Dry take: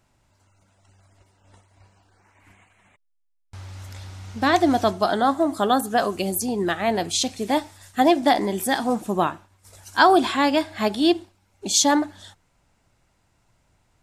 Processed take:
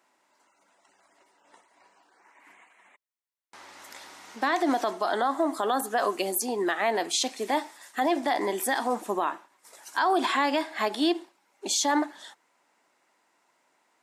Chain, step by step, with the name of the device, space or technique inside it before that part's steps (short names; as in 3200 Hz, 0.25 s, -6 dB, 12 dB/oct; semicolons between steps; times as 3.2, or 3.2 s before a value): laptop speaker (HPF 280 Hz 24 dB/oct; bell 1000 Hz +5.5 dB 0.59 oct; bell 1900 Hz +5.5 dB 0.44 oct; limiter -14 dBFS, peak gain reduction 13 dB); 3.84–4.36 high shelf 8700 Hz +6 dB; gain -2 dB